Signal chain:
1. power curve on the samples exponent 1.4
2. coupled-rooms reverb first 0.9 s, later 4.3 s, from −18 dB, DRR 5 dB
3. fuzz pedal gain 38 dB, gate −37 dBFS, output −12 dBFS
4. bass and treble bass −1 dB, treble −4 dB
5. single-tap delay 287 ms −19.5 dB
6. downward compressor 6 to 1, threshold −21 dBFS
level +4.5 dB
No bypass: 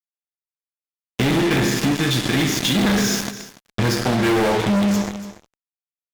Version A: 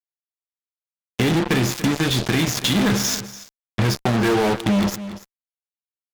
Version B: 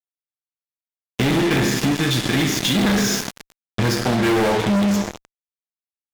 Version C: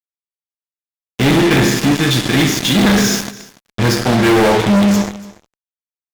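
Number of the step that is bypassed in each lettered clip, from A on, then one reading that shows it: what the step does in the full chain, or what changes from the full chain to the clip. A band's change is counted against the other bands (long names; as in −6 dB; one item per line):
2, change in momentary loudness spread +2 LU
5, change in momentary loudness spread −6 LU
6, average gain reduction 4.5 dB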